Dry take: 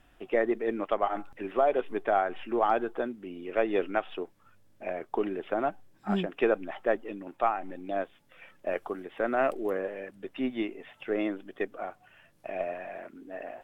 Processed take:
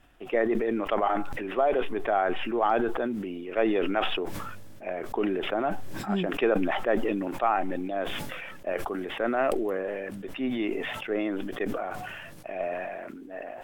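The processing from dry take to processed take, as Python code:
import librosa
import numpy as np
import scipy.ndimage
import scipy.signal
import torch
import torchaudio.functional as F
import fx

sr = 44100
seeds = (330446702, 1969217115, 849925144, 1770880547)

y = fx.sustainer(x, sr, db_per_s=25.0)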